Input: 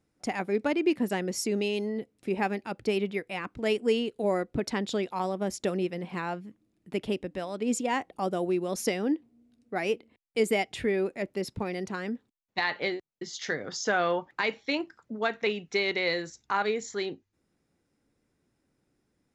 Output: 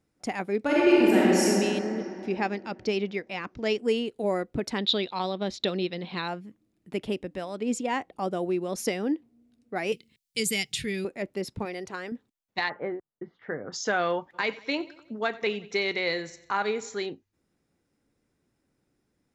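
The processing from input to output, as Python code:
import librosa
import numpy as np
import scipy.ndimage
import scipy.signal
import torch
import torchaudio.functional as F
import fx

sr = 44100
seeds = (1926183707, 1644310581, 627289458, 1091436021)

y = fx.reverb_throw(x, sr, start_s=0.64, length_s=0.8, rt60_s=2.9, drr_db=-7.5)
y = fx.high_shelf_res(y, sr, hz=7400.0, db=-9.0, q=3.0, at=(2.0, 3.8))
y = fx.lowpass_res(y, sr, hz=3900.0, q=8.1, at=(4.78, 6.28))
y = fx.high_shelf(y, sr, hz=11000.0, db=-10.0, at=(7.61, 8.78))
y = fx.curve_eq(y, sr, hz=(100.0, 150.0, 260.0, 420.0, 670.0, 1000.0, 4100.0), db=(0, 10, -7, -7, -17, -11, 11), at=(9.92, 11.05))
y = fx.peak_eq(y, sr, hz=210.0, db=-10.5, octaves=0.77, at=(11.65, 12.12))
y = fx.lowpass(y, sr, hz=1500.0, slope=24, at=(12.68, 13.72), fade=0.02)
y = fx.echo_feedback(y, sr, ms=91, feedback_pct=51, wet_db=-18.5, at=(14.33, 17.05), fade=0.02)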